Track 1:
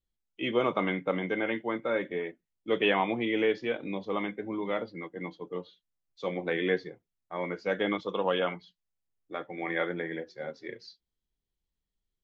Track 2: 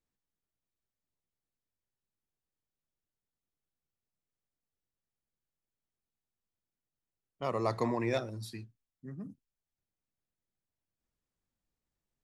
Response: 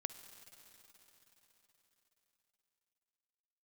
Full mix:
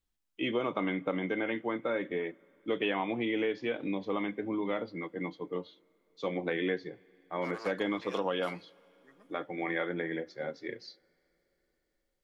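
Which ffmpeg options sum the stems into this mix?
-filter_complex "[0:a]volume=0dB,asplit=3[a][b][c];[b]volume=-18dB[d];[1:a]aeval=exprs='clip(val(0),-1,0.0224)':c=same,highpass=890,volume=0dB,asplit=2[e][f];[f]volume=-17dB[g];[c]apad=whole_len=539643[h];[e][h]sidechaincompress=threshold=-33dB:ratio=8:attack=38:release=373[i];[2:a]atrim=start_sample=2205[j];[d][g]amix=inputs=2:normalize=0[k];[k][j]afir=irnorm=-1:irlink=0[l];[a][i][l]amix=inputs=3:normalize=0,equalizer=f=290:w=7.7:g=6.5,acompressor=threshold=-29dB:ratio=3"

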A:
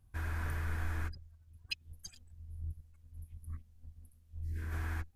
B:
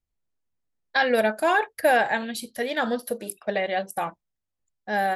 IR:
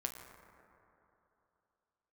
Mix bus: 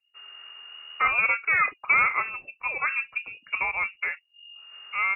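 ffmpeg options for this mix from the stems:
-filter_complex "[0:a]volume=-9.5dB,asplit=3[a][b][c];[a]atrim=end=2.01,asetpts=PTS-STARTPTS,afade=t=out:st=2.006:d=0.004:c=hsin[d];[b]atrim=start=2.01:end=2.82,asetpts=PTS-STARTPTS,volume=0[e];[c]atrim=start=2.82,asetpts=PTS-STARTPTS,afade=t=in:d=0.004:c=hsin[f];[d][e][f]concat=n=3:v=0:a=1[g];[1:a]lowshelf=f=420:g=-4.5,adelay=50,volume=-0.5dB[h];[g][h]amix=inputs=2:normalize=0,lowpass=f=2.5k:t=q:w=0.5098,lowpass=f=2.5k:t=q:w=0.6013,lowpass=f=2.5k:t=q:w=0.9,lowpass=f=2.5k:t=q:w=2.563,afreqshift=-2900"

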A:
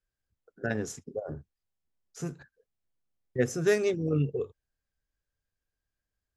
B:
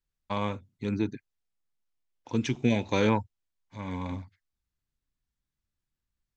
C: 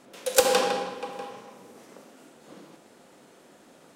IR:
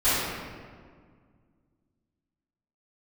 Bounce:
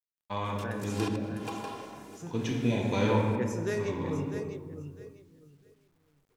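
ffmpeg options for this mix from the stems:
-filter_complex "[0:a]bandreject=f=136:t=h:w=4,bandreject=f=272:t=h:w=4,bandreject=f=408:t=h:w=4,bandreject=f=544:t=h:w=4,bandreject=f=680:t=h:w=4,bandreject=f=816:t=h:w=4,bandreject=f=952:t=h:w=4,bandreject=f=1.088k:t=h:w=4,bandreject=f=1.224k:t=h:w=4,bandreject=f=1.36k:t=h:w=4,bandreject=f=1.496k:t=h:w=4,bandreject=f=1.632k:t=h:w=4,bandreject=f=1.768k:t=h:w=4,bandreject=f=1.904k:t=h:w=4,bandreject=f=2.04k:t=h:w=4,bandreject=f=2.176k:t=h:w=4,bandreject=f=2.312k:t=h:w=4,bandreject=f=2.448k:t=h:w=4,bandreject=f=2.584k:t=h:w=4,bandreject=f=2.72k:t=h:w=4,bandreject=f=2.856k:t=h:w=4,bandreject=f=2.992k:t=h:w=4,bandreject=f=3.128k:t=h:w=4,bandreject=f=3.264k:t=h:w=4,bandreject=f=3.4k:t=h:w=4,bandreject=f=3.536k:t=h:w=4,bandreject=f=3.672k:t=h:w=4,bandreject=f=3.808k:t=h:w=4,bandreject=f=3.944k:t=h:w=4,volume=-8dB,asplit=4[a][b][c][d];[b]volume=-21.5dB[e];[c]volume=-8.5dB[f];[1:a]bandreject=f=2.2k:w=17,volume=-6.5dB,asplit=2[g][h];[h]volume=-13.5dB[i];[2:a]aecho=1:1:2.9:0.86,acompressor=threshold=-31dB:ratio=4,adelay=450,volume=-1.5dB,asplit=2[j][k];[k]volume=-22dB[l];[d]apad=whole_len=194181[m];[j][m]sidechaincompress=threshold=-54dB:ratio=10:attack=5.1:release=132[n];[3:a]atrim=start_sample=2205[o];[e][i]amix=inputs=2:normalize=0[p];[p][o]afir=irnorm=-1:irlink=0[q];[f][l]amix=inputs=2:normalize=0,aecho=0:1:652|1304|1956:1|0.21|0.0441[r];[a][g][n][q][r]amix=inputs=5:normalize=0,acrusher=bits=11:mix=0:aa=0.000001"

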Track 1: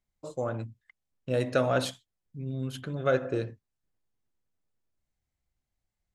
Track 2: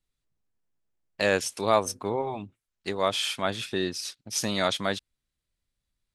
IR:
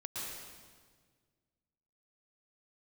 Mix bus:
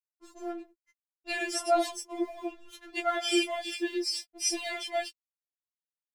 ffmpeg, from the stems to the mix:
-filter_complex "[0:a]acontrast=45,volume=-6.5dB[a];[1:a]aecho=1:1:3.3:0.95,acompressor=threshold=-24dB:ratio=6,adelay=100,volume=1dB[b];[a][b]amix=inputs=2:normalize=0,aeval=exprs='sgn(val(0))*max(abs(val(0))-0.00299,0)':c=same,afftfilt=real='re*4*eq(mod(b,16),0)':imag='im*4*eq(mod(b,16),0)':win_size=2048:overlap=0.75"

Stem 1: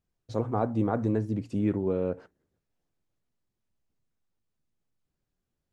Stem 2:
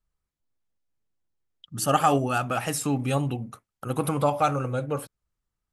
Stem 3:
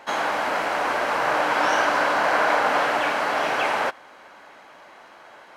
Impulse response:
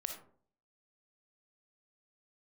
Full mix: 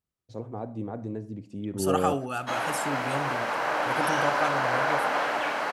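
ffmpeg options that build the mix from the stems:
-filter_complex "[0:a]equalizer=f=1.3k:w=2:g=-5.5,volume=1dB,asplit=2[a][b];[b]volume=-18.5dB[c];[1:a]lowshelf=f=98:g=-10,volume=-8dB,asplit=3[d][e][f];[e]volume=-9.5dB[g];[2:a]adelay=2400,volume=-5.5dB[h];[f]apad=whole_len=252333[i];[a][i]sidechaingate=range=-11dB:threshold=-43dB:ratio=16:detection=peak[j];[3:a]atrim=start_sample=2205[k];[c][g]amix=inputs=2:normalize=0[l];[l][k]afir=irnorm=-1:irlink=0[m];[j][d][h][m]amix=inputs=4:normalize=0,highpass=61"

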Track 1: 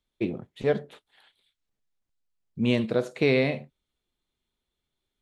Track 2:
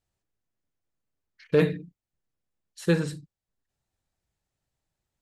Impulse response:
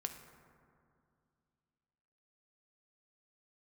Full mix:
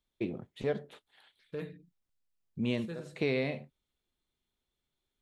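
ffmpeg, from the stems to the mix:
-filter_complex "[0:a]volume=-3dB[a];[1:a]volume=-17.5dB,asplit=2[b][c];[c]apad=whole_len=229837[d];[a][d]sidechaincompress=threshold=-55dB:ratio=8:attack=16:release=149[e];[e][b]amix=inputs=2:normalize=0,acompressor=threshold=-36dB:ratio=1.5"

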